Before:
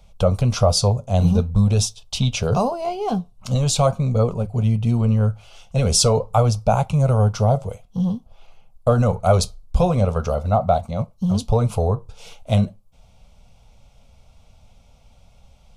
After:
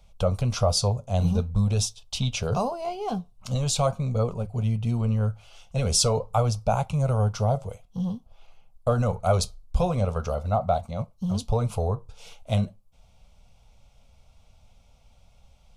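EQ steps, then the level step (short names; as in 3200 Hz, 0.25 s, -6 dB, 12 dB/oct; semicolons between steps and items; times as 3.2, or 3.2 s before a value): bell 250 Hz -3 dB 2.7 oct; -4.5 dB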